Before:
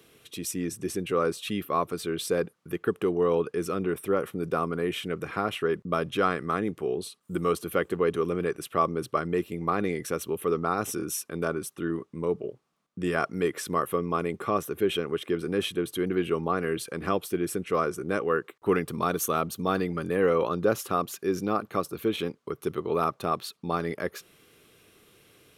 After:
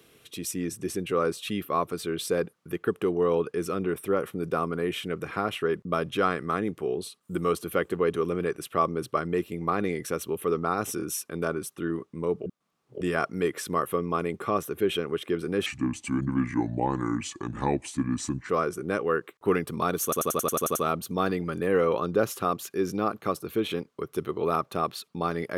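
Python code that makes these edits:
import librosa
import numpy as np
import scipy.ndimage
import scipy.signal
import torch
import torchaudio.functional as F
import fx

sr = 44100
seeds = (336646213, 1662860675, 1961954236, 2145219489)

y = fx.edit(x, sr, fx.reverse_span(start_s=12.46, length_s=0.55),
    fx.speed_span(start_s=15.66, length_s=2.04, speed=0.72),
    fx.stutter(start_s=19.24, slice_s=0.09, count=9), tone=tone)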